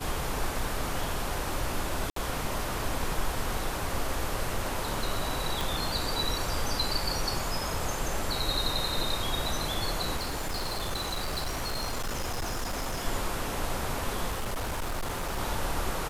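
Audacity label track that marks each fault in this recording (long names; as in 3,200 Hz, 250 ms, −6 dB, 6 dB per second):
2.100000	2.160000	drop-out 63 ms
5.610000	5.610000	click
10.160000	13.050000	clipping −28 dBFS
14.300000	15.390000	clipping −28 dBFS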